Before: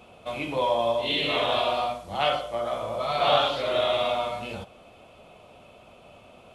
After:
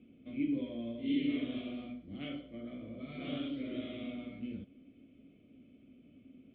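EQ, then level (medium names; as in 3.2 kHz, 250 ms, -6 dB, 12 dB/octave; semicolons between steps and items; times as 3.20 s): vowel filter i; distance through air 120 m; tilt EQ -4.5 dB/octave; 0.0 dB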